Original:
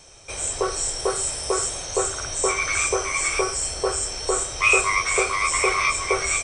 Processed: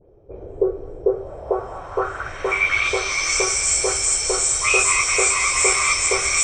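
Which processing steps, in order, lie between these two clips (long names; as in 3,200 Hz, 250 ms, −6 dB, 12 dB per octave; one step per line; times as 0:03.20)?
every frequency bin delayed by itself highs late, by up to 104 ms
delay with a high-pass on its return 207 ms, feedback 81%, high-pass 1,500 Hz, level −7 dB
low-pass filter sweep 420 Hz → 7,600 Hz, 0:01.04–0:03.56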